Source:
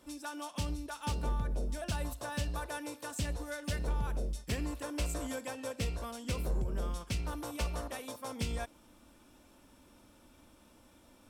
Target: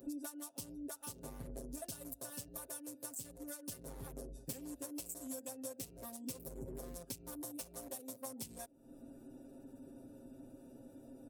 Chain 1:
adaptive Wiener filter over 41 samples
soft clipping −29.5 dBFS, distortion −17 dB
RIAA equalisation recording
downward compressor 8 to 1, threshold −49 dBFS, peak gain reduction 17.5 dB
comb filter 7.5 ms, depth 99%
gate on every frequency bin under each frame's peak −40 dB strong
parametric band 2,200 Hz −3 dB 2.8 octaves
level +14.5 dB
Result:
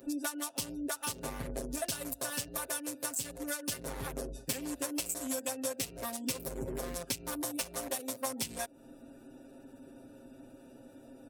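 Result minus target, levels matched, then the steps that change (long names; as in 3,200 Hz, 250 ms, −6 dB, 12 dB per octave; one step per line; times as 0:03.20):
2,000 Hz band +7.0 dB; downward compressor: peak gain reduction −6.5 dB
change: downward compressor 8 to 1, threshold −56.5 dBFS, peak gain reduction 24 dB
change: parametric band 2,200 Hz −15 dB 2.8 octaves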